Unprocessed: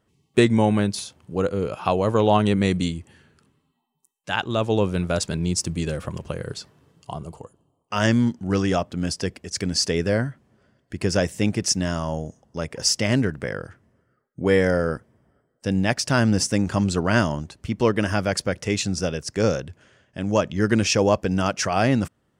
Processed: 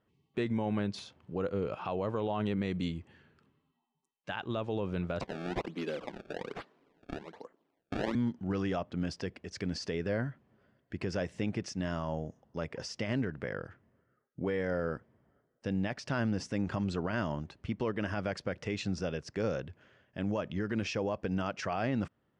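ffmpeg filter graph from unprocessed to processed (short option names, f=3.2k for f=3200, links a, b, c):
-filter_complex "[0:a]asettb=1/sr,asplit=3[a][b][c];[a]atrim=end=5.214[d];[b]atrim=start=5.21:end=8.15,asetpts=PTS-STARTPTS,afade=t=in:d=0.004:c=qsin,afade=t=out:st=2.936:d=0.004:c=qsin,highpass=f=230:w=0.5412,highpass=f=230:w=1.3066,acrusher=samples=25:mix=1:aa=0.000001:lfo=1:lforange=40:lforate=1.2[e];[c]atrim=start=8.146[f];[d][e]acrossfade=d=0.004:c1=hsin:c2=qsin[g];[g][f]acrossfade=d=0.004:c1=qsin:c2=hsin,alimiter=limit=-16.5dB:level=0:latency=1:release=118,lowpass=3.4k,lowshelf=f=88:g=-5,volume=-6dB"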